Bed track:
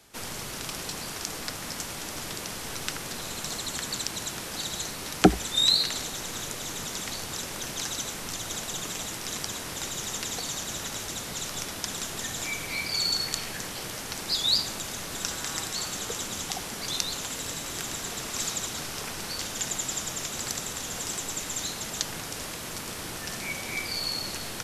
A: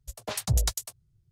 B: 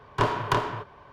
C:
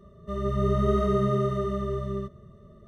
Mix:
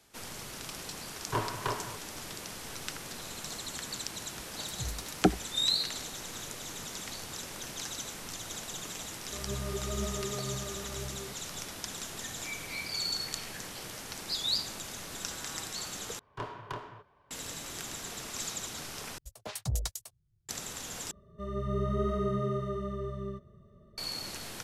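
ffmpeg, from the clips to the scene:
ffmpeg -i bed.wav -i cue0.wav -i cue1.wav -i cue2.wav -filter_complex "[2:a]asplit=2[link_01][link_02];[1:a]asplit=2[link_03][link_04];[3:a]asplit=2[link_05][link_06];[0:a]volume=-6.5dB[link_07];[link_01]flanger=delay=1.5:depth=8.2:regen=72:speed=1.8:shape=triangular[link_08];[link_05]aphaser=in_gain=1:out_gain=1:delay=3:decay=0.5:speed=2:type=triangular[link_09];[link_07]asplit=4[link_10][link_11][link_12][link_13];[link_10]atrim=end=16.194[link_14];[link_02]atrim=end=1.12,asetpts=PTS-STARTPTS,volume=-15.5dB[link_15];[link_11]atrim=start=17.306:end=19.184[link_16];[link_04]atrim=end=1.31,asetpts=PTS-STARTPTS,volume=-7.5dB[link_17];[link_12]atrim=start=20.486:end=21.114[link_18];[link_06]atrim=end=2.87,asetpts=PTS-STARTPTS,volume=-7dB[link_19];[link_13]atrim=start=23.976[link_20];[link_08]atrim=end=1.12,asetpts=PTS-STARTPTS,volume=-4.5dB,afade=type=in:duration=0.004:curve=hsin,afade=type=out:start_time=1.116:duration=0.004:curve=hsin,adelay=1140[link_21];[link_03]atrim=end=1.31,asetpts=PTS-STARTPTS,volume=-14dB,afade=type=in:duration=0.004:curve=hsin,afade=type=out:start_time=1.306:duration=0.004:curve=hsin,adelay=4310[link_22];[link_09]atrim=end=2.87,asetpts=PTS-STARTPTS,volume=-13.5dB,afade=type=in:duration=0.004:curve=hsin,afade=type=out:start_time=2.866:duration=0.004:curve=hsin,adelay=9040[link_23];[link_14][link_15]acrossfade=duration=0.004:curve1=hsin:curve2=hsin[link_24];[link_24][link_16]acrossfade=duration=0.004:curve1=hsin:curve2=hsin[link_25];[link_25][link_17]acrossfade=duration=0.004:curve1=hsin:curve2=hsin[link_26];[link_26][link_18]acrossfade=duration=0.004:curve1=hsin:curve2=hsin[link_27];[link_27][link_19]acrossfade=duration=0.004:curve1=hsin:curve2=hsin[link_28];[link_28][link_20]acrossfade=duration=0.004:curve1=hsin:curve2=hsin[link_29];[link_29][link_21][link_22][link_23]amix=inputs=4:normalize=0" out.wav

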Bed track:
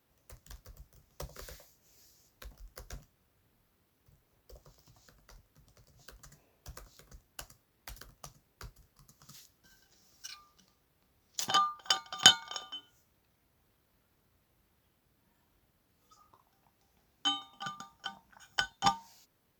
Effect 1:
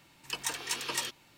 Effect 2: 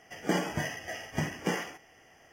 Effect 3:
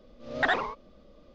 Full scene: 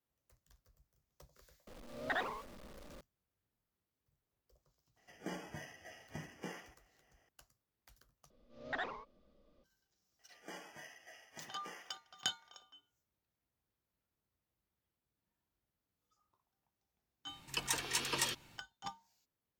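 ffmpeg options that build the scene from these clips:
ffmpeg -i bed.wav -i cue0.wav -i cue1.wav -i cue2.wav -filter_complex "[3:a]asplit=2[link_01][link_02];[2:a]asplit=2[link_03][link_04];[0:a]volume=-17.5dB[link_05];[link_01]aeval=exprs='val(0)+0.5*0.0133*sgn(val(0))':channel_layout=same[link_06];[link_04]highpass=frequency=760:poles=1[link_07];[1:a]lowshelf=frequency=150:gain=10.5[link_08];[link_05]asplit=2[link_09][link_10];[link_09]atrim=end=8.304[link_11];[link_02]atrim=end=1.34,asetpts=PTS-STARTPTS,volume=-14.5dB[link_12];[link_10]atrim=start=9.636[link_13];[link_06]atrim=end=1.34,asetpts=PTS-STARTPTS,volume=-12dB,afade=type=in:duration=0.004:curve=hsin,afade=type=out:start_time=1.336:duration=0.004:curve=hsin,adelay=1670[link_14];[link_03]atrim=end=2.32,asetpts=PTS-STARTPTS,volume=-15.5dB,afade=type=in:duration=0.004:curve=hsin,afade=type=out:start_time=2.316:duration=0.004:curve=hsin,adelay=219177S[link_15];[link_07]atrim=end=2.32,asetpts=PTS-STARTPTS,volume=-16.5dB,afade=type=in:duration=0.004:curve=hsin,afade=type=out:start_time=2.316:duration=0.004:curve=hsin,adelay=10190[link_16];[link_08]atrim=end=1.37,asetpts=PTS-STARTPTS,volume=-2dB,afade=type=in:duration=0.05,afade=type=out:start_time=1.32:duration=0.05,adelay=17240[link_17];[link_11][link_12]acrossfade=duration=0.004:curve1=hsin:curve2=hsin[link_18];[link_18][link_13]acrossfade=duration=0.004:curve1=hsin:curve2=hsin[link_19];[link_19][link_14][link_15][link_16][link_17]amix=inputs=5:normalize=0" out.wav

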